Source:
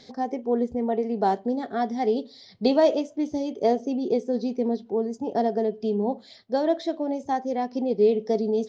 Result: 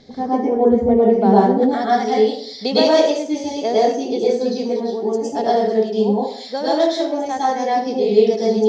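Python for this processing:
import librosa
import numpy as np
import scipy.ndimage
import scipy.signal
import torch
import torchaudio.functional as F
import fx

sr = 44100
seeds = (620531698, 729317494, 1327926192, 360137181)

y = fx.tilt_eq(x, sr, slope=fx.steps((0.0, -2.0), (1.61, 2.5)))
y = fx.rev_plate(y, sr, seeds[0], rt60_s=0.55, hf_ratio=0.75, predelay_ms=95, drr_db=-7.0)
y = y * 10.0 ** (1.5 / 20.0)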